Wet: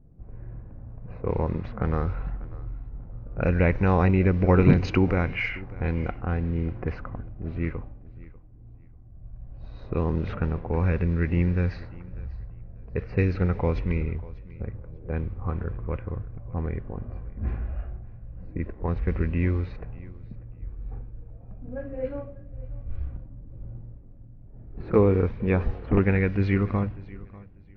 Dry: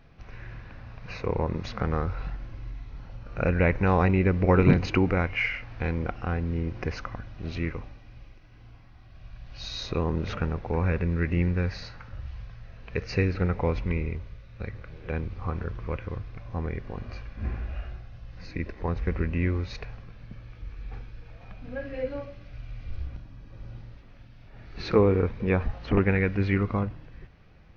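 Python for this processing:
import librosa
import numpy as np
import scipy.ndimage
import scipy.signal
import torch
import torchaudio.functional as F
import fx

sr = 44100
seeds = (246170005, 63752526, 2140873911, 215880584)

y = fx.env_lowpass(x, sr, base_hz=370.0, full_db=-20.0)
y = fx.low_shelf(y, sr, hz=490.0, db=4.0)
y = fx.echo_feedback(y, sr, ms=593, feedback_pct=21, wet_db=-20.5)
y = F.gain(torch.from_numpy(y), -1.5).numpy()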